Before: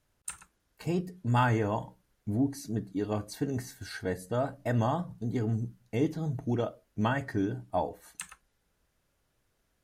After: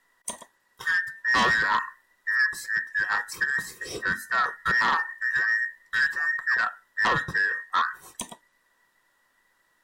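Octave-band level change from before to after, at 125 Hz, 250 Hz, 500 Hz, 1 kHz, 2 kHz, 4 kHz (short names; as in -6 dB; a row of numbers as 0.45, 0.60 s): -14.5, -11.5, -7.5, +7.5, +20.0, +12.5 dB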